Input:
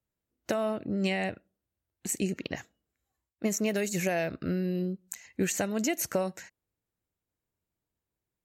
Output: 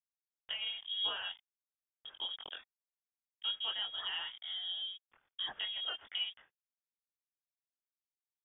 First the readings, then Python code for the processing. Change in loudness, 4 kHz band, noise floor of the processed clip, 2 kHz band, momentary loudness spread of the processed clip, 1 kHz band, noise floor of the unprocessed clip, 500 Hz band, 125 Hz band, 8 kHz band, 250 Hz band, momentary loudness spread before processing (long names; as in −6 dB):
−6.5 dB, +9.5 dB, below −85 dBFS, −9.0 dB, 14 LU, −11.5 dB, below −85 dBFS, −27.0 dB, below −35 dB, below −40 dB, below −35 dB, 11 LU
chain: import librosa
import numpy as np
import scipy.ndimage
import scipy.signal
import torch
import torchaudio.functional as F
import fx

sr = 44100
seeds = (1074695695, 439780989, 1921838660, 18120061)

y = np.sign(x) * np.maximum(np.abs(x) - 10.0 ** (-48.5 / 20.0), 0.0)
y = fx.chorus_voices(y, sr, voices=4, hz=1.3, base_ms=22, depth_ms=3.0, mix_pct=45)
y = fx.freq_invert(y, sr, carrier_hz=3500)
y = F.gain(torch.from_numpy(y), -6.0).numpy()